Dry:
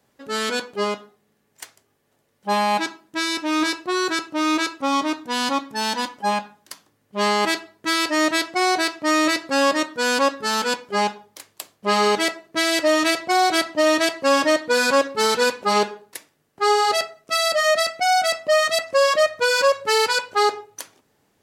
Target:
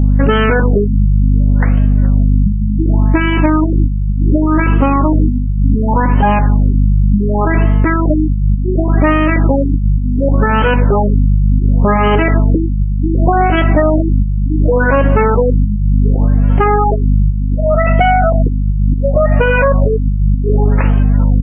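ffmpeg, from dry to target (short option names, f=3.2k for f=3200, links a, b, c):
-filter_complex "[0:a]lowpass=4.3k,lowshelf=f=260:g=8,bandreject=f=60:t=h:w=6,bandreject=f=120:t=h:w=6,bandreject=f=180:t=h:w=6,bandreject=f=240:t=h:w=6,bandreject=f=300:t=h:w=6,bandreject=f=360:t=h:w=6,bandreject=f=420:t=h:w=6,acompressor=threshold=-29dB:ratio=12,aeval=exprs='val(0)+0.0251*(sin(2*PI*50*n/s)+sin(2*PI*2*50*n/s)/2+sin(2*PI*3*50*n/s)/3+sin(2*PI*4*50*n/s)/4+sin(2*PI*5*50*n/s)/5)':c=same,asplit=2[a][b];[b]asplit=5[c][d][e][f][g];[c]adelay=421,afreqshift=44,volume=-22.5dB[h];[d]adelay=842,afreqshift=88,volume=-26.4dB[i];[e]adelay=1263,afreqshift=132,volume=-30.3dB[j];[f]adelay=1684,afreqshift=176,volume=-34.1dB[k];[g]adelay=2105,afreqshift=220,volume=-38dB[l];[h][i][j][k][l]amix=inputs=5:normalize=0[m];[a][m]amix=inputs=2:normalize=0,alimiter=level_in=25dB:limit=-1dB:release=50:level=0:latency=1,afftfilt=real='re*lt(b*sr/1024,210*pow(3300/210,0.5+0.5*sin(2*PI*0.68*pts/sr)))':imag='im*lt(b*sr/1024,210*pow(3300/210,0.5+0.5*sin(2*PI*0.68*pts/sr)))':win_size=1024:overlap=0.75,volume=-1dB"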